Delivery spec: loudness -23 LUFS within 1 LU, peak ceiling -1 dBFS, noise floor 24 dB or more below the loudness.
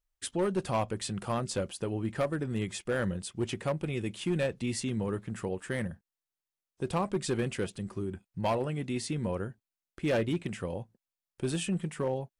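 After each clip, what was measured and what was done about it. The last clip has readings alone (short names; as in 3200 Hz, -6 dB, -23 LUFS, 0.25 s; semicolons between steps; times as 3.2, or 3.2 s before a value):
clipped 1.1%; flat tops at -23.0 dBFS; loudness -33.5 LUFS; peak -23.0 dBFS; loudness target -23.0 LUFS
-> clip repair -23 dBFS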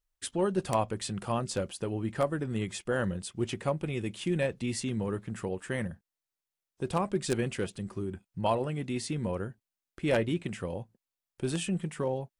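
clipped 0.0%; loudness -33.0 LUFS; peak -14.0 dBFS; loudness target -23.0 LUFS
-> gain +10 dB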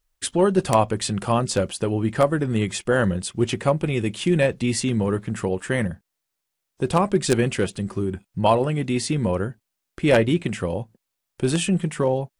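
loudness -23.0 LUFS; peak -4.0 dBFS; noise floor -81 dBFS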